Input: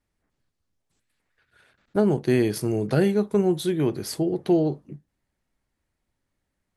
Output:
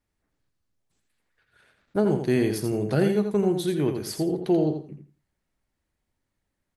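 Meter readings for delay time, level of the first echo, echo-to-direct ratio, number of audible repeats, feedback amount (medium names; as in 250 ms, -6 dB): 84 ms, -7.0 dB, -7.0 dB, 3, 20%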